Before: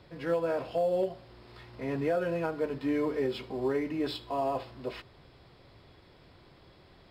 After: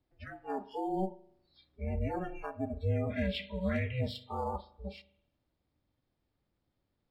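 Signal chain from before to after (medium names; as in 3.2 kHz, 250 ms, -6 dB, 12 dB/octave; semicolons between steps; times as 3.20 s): 3.10–4.01 s: high-order bell 2.3 kHz +10 dB; ring modulator 190 Hz; bass shelf 180 Hz +10.5 dB; in parallel at -0.5 dB: compression, threshold -45 dBFS, peak gain reduction 20 dB; on the sum: hard clipper -19 dBFS, distortion -28 dB; spectral noise reduction 28 dB; on a send at -17 dB: reverberation RT60 0.75 s, pre-delay 40 ms; on the sum: trim -3.5 dB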